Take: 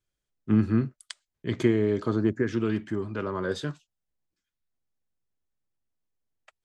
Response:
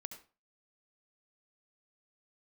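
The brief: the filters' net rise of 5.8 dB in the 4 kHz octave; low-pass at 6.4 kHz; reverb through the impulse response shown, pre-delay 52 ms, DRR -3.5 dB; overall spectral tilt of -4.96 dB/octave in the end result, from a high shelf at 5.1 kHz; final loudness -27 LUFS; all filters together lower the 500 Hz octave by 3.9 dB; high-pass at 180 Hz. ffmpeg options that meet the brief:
-filter_complex "[0:a]highpass=180,lowpass=6400,equalizer=f=500:t=o:g=-5.5,equalizer=f=4000:t=o:g=4.5,highshelf=f=5100:g=8,asplit=2[s0][s1];[1:a]atrim=start_sample=2205,adelay=52[s2];[s1][s2]afir=irnorm=-1:irlink=0,volume=2.24[s3];[s0][s3]amix=inputs=2:normalize=0,volume=0.794"

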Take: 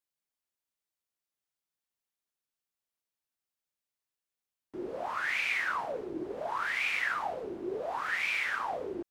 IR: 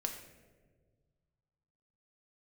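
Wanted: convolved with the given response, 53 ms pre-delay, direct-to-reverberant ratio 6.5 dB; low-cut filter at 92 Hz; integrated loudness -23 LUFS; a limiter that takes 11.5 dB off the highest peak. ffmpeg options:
-filter_complex "[0:a]highpass=92,alimiter=level_in=2:limit=0.0631:level=0:latency=1,volume=0.501,asplit=2[s0][s1];[1:a]atrim=start_sample=2205,adelay=53[s2];[s1][s2]afir=irnorm=-1:irlink=0,volume=0.447[s3];[s0][s3]amix=inputs=2:normalize=0,volume=4.73"

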